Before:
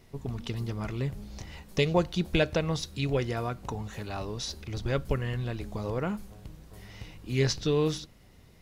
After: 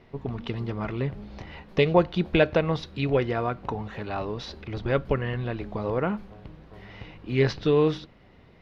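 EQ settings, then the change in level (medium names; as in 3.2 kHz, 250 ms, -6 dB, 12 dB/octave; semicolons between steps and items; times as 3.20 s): distance through air 340 m; bass shelf 170 Hz -10 dB; +8.0 dB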